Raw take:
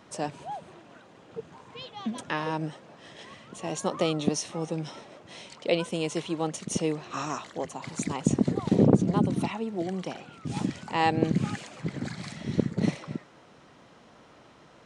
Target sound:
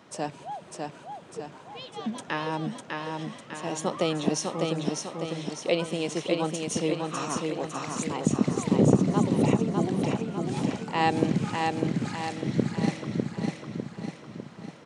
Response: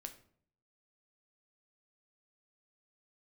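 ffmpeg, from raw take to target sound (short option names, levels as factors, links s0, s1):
-filter_complex "[0:a]highpass=100,asplit=2[s0][s1];[s1]aecho=0:1:601|1202|1803|2404|3005|3606|4207:0.668|0.341|0.174|0.0887|0.0452|0.0231|0.0118[s2];[s0][s2]amix=inputs=2:normalize=0"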